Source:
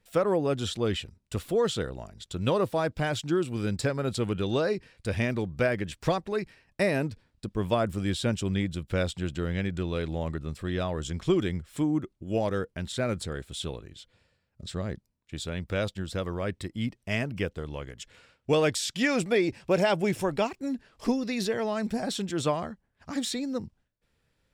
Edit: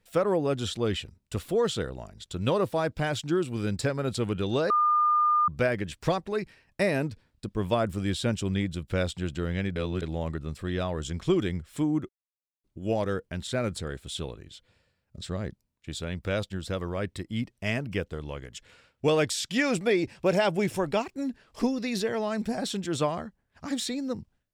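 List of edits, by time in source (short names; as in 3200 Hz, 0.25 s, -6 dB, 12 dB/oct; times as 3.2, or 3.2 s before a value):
4.7–5.48 bleep 1210 Hz -19.5 dBFS
9.76–10.02 reverse
12.09 insert silence 0.55 s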